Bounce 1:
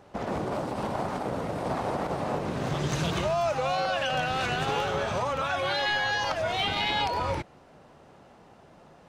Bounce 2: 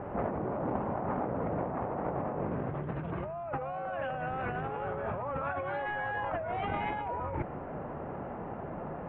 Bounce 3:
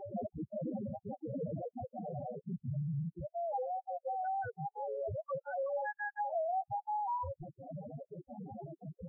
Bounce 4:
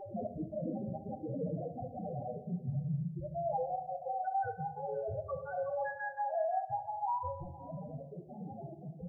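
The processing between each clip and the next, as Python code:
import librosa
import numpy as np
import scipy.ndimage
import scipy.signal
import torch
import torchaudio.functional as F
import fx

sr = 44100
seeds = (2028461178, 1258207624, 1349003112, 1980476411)

y1 = scipy.signal.sosfilt(scipy.signal.bessel(8, 1300.0, 'lowpass', norm='mag', fs=sr, output='sos'), x)
y1 = fx.over_compress(y1, sr, threshold_db=-40.0, ratio=-1.0)
y1 = y1 * librosa.db_to_amplitude(5.5)
y2 = fx.step_gate(y1, sr, bpm=170, pattern='xxx.x.xx', floor_db=-60.0, edge_ms=4.5)
y2 = fx.spec_topn(y2, sr, count=2)
y2 = y2 * librosa.db_to_amplitude(4.0)
y3 = y2 + 10.0 ** (-19.5 / 20.0) * np.pad(y2, (int(516 * sr / 1000.0), 0))[:len(y2)]
y3 = fx.room_shoebox(y3, sr, seeds[0], volume_m3=370.0, walls='mixed', distance_m=0.58)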